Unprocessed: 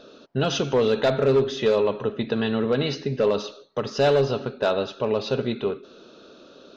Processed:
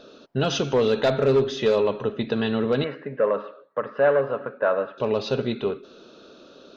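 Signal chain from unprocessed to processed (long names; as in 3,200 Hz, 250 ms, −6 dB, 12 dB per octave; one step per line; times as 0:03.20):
0:02.84–0:04.98: loudspeaker in its box 240–2,000 Hz, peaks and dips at 240 Hz −5 dB, 380 Hz −9 dB, 540 Hz +5 dB, 800 Hz −5 dB, 1,100 Hz +5 dB, 1,700 Hz +6 dB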